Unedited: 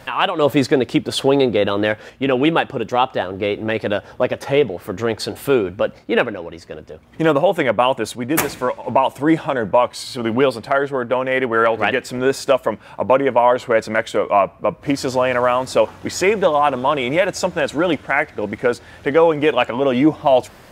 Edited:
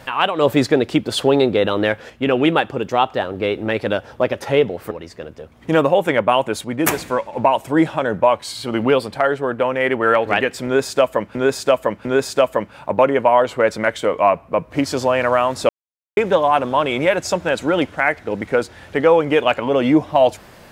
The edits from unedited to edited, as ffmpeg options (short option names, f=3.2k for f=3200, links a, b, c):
-filter_complex "[0:a]asplit=6[a][b][c][d][e][f];[a]atrim=end=4.912[g];[b]atrim=start=6.418:end=12.862[h];[c]atrim=start=12.158:end=12.862[i];[d]atrim=start=12.158:end=15.8,asetpts=PTS-STARTPTS,afade=t=out:st=3.638:d=0.004:c=hsin[j];[e]atrim=start=15.8:end=16.28,asetpts=PTS-STARTPTS,volume=0[k];[f]atrim=start=16.28,asetpts=PTS-STARTPTS,afade=t=in:d=0.004:c=hsin[l];[g][h]acrossfade=d=0.004:c1=hsin:c2=hsin[m];[m][i]acrossfade=d=0.004:c1=hsin:c2=hsin[n];[j][k][l]concat=n=3:v=0:a=1[o];[n][o]acrossfade=d=0.004:c1=hsin:c2=hsin"